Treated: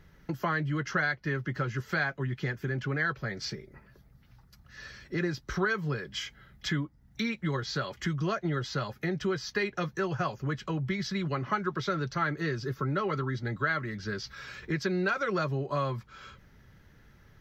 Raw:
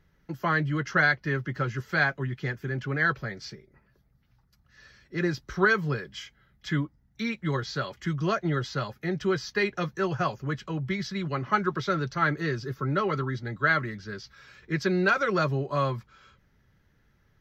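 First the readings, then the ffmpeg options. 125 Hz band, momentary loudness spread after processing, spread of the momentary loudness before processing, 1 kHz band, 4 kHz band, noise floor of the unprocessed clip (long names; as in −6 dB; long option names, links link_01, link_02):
−2.5 dB, 9 LU, 13 LU, −4.5 dB, −0.5 dB, −66 dBFS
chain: -af "acompressor=threshold=-41dB:ratio=2.5,volume=8dB"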